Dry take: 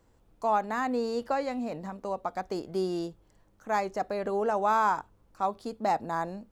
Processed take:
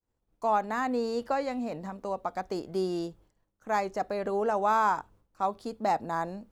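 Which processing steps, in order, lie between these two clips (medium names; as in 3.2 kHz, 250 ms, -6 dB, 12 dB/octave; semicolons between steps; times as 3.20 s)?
expander -52 dBFS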